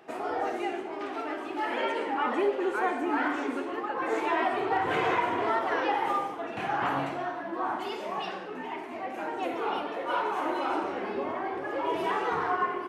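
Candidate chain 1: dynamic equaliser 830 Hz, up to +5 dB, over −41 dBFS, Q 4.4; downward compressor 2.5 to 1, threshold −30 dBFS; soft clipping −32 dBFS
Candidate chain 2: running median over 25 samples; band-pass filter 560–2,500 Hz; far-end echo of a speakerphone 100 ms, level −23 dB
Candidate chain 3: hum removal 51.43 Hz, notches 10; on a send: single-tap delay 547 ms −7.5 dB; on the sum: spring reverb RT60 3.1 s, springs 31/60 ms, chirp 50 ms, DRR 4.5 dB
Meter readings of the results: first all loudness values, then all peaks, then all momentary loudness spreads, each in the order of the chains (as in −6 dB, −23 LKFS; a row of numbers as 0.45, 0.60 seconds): −36.5, −35.0, −28.0 LKFS; −32.0, −18.5, −13.0 dBFS; 2, 8, 7 LU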